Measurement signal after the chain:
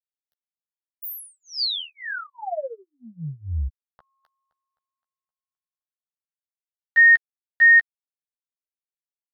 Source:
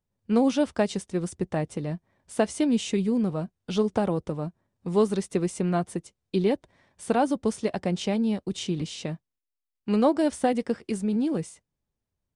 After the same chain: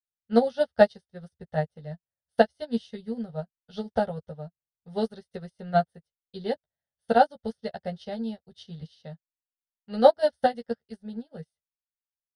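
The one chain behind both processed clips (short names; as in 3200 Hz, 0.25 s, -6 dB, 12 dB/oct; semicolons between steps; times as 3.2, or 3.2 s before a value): dynamic EQ 4600 Hz, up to +4 dB, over -53 dBFS, Q 4.5; fixed phaser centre 1600 Hz, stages 8; doubler 13 ms -5 dB; upward expander 2.5:1, over -46 dBFS; gain +9 dB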